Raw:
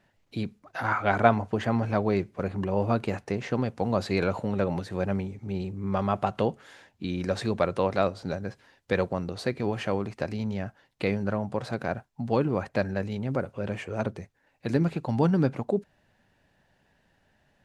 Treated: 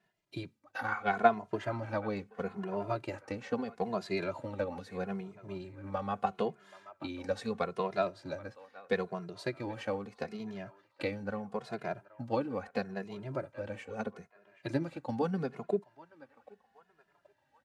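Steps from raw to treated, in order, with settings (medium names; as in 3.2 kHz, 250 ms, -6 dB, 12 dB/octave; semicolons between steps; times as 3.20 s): on a send: band-passed feedback delay 778 ms, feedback 49%, band-pass 1.3 kHz, level -15 dB; on the sum: transient shaper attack +5 dB, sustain -1 dB; high-pass 200 Hz 6 dB/octave; endless flanger 2.4 ms -0.77 Hz; trim -5.5 dB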